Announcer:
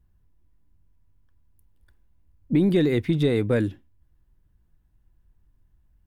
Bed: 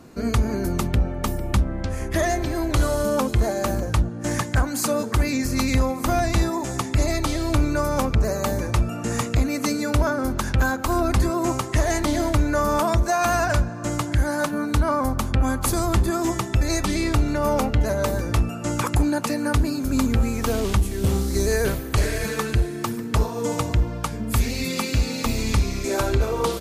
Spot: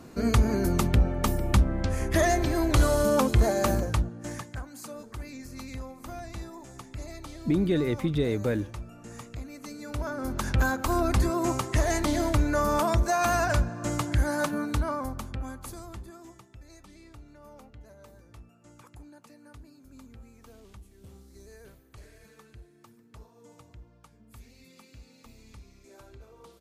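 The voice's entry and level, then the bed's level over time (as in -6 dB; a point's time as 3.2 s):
4.95 s, -5.0 dB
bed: 3.74 s -1 dB
4.65 s -18.5 dB
9.66 s -18.5 dB
10.49 s -4 dB
14.52 s -4 dB
16.55 s -29 dB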